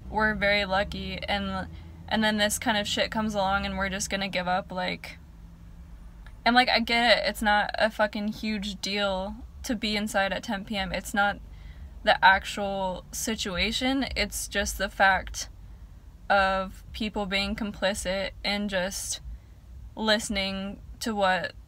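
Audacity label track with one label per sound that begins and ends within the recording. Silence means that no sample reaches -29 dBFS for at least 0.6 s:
6.460000	11.320000	sound
12.050000	15.430000	sound
16.300000	19.150000	sound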